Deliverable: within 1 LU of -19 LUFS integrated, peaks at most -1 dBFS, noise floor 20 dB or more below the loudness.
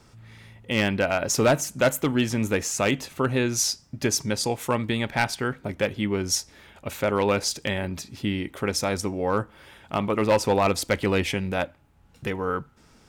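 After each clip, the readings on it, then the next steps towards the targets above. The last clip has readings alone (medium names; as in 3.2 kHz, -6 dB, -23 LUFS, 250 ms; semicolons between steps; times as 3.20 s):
clipped samples 0.3%; clipping level -13.5 dBFS; loudness -25.0 LUFS; peak level -13.5 dBFS; loudness target -19.0 LUFS
-> clip repair -13.5 dBFS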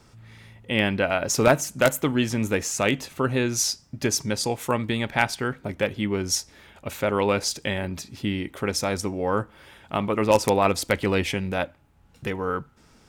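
clipped samples 0.0%; loudness -25.0 LUFS; peak level -4.5 dBFS; loudness target -19.0 LUFS
-> trim +6 dB; peak limiter -1 dBFS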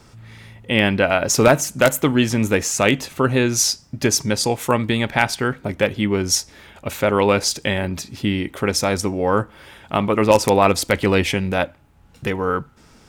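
loudness -19.0 LUFS; peak level -1.0 dBFS; noise floor -50 dBFS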